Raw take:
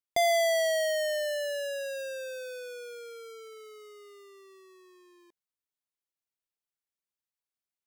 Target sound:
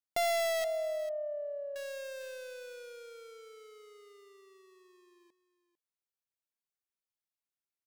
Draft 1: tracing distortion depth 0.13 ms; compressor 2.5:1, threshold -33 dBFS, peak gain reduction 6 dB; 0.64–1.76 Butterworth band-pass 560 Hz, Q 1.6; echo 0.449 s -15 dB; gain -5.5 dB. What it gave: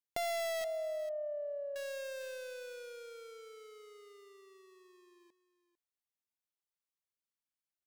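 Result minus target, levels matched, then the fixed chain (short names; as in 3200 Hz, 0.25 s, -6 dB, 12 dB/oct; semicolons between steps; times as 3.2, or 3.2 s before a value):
compressor: peak gain reduction +6 dB
tracing distortion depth 0.13 ms; 0.64–1.76 Butterworth band-pass 560 Hz, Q 1.6; echo 0.449 s -15 dB; gain -5.5 dB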